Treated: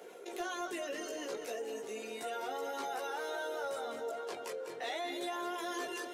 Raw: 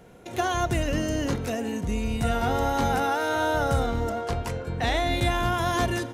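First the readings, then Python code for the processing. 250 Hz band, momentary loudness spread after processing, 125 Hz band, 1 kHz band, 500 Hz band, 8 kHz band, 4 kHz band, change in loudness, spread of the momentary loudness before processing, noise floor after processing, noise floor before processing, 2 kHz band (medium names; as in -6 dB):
-17.0 dB, 3 LU, under -40 dB, -13.5 dB, -10.5 dB, -9.5 dB, -11.0 dB, -13.0 dB, 5 LU, -46 dBFS, -39 dBFS, -12.0 dB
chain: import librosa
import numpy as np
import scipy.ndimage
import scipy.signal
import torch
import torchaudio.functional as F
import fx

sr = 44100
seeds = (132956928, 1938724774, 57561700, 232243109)

y = fx.dereverb_blind(x, sr, rt60_s=0.77)
y = fx.ladder_highpass(y, sr, hz=360.0, resonance_pct=60)
y = fx.tilt_shelf(y, sr, db=-3.5, hz=1300.0)
y = fx.chorus_voices(y, sr, voices=2, hz=0.37, base_ms=16, depth_ms=1.9, mix_pct=50)
y = np.clip(y, -10.0 ** (-30.0 / 20.0), 10.0 ** (-30.0 / 20.0))
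y = fx.echo_feedback(y, sr, ms=201, feedback_pct=53, wet_db=-11.5)
y = fx.rev_freeverb(y, sr, rt60_s=4.0, hf_ratio=0.7, predelay_ms=105, drr_db=19.0)
y = fx.env_flatten(y, sr, amount_pct=50)
y = F.gain(torch.from_numpy(y), -2.0).numpy()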